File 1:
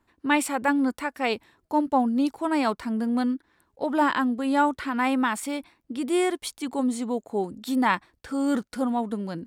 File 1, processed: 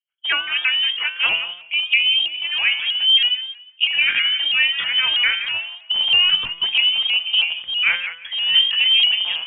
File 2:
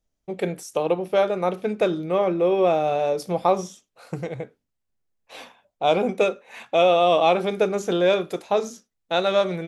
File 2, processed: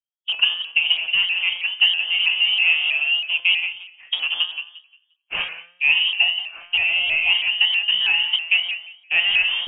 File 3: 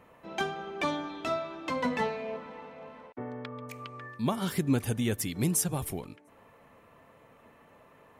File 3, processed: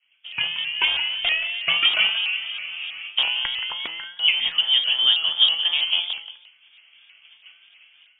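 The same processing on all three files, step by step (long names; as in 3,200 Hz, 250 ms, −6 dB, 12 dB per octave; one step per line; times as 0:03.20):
loose part that buzzes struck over −39 dBFS, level −30 dBFS
in parallel at −10 dB: soft clipping −24.5 dBFS
on the sum: tilt shelving filter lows +6 dB, about 1,300 Hz
downward expander −41 dBFS
harmonic and percussive parts rebalanced percussive +9 dB
voice inversion scrambler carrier 3,300 Hz
on a send: feedback echo with a high-pass in the loop 176 ms, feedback 20%, high-pass 820 Hz, level −9 dB
on the sum: automatic gain control gain up to 13.5 dB
parametric band 2,600 Hz +7 dB 2.9 octaves
tuned comb filter 170 Hz, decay 0.81 s, harmonics all, mix 80%
pitch modulation by a square or saw wave saw up 3.1 Hz, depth 100 cents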